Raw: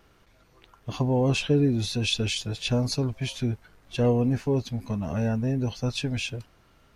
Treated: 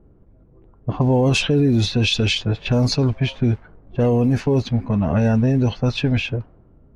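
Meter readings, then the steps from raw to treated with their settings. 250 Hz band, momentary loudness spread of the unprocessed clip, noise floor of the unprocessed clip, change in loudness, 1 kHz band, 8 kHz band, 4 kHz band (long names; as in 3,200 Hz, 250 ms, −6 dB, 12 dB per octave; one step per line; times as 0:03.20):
+7.5 dB, 9 LU, −60 dBFS, +7.0 dB, +7.0 dB, +3.0 dB, +6.5 dB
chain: low-pass that shuts in the quiet parts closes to 350 Hz, open at −19.5 dBFS
boost into a limiter +20 dB
level −9 dB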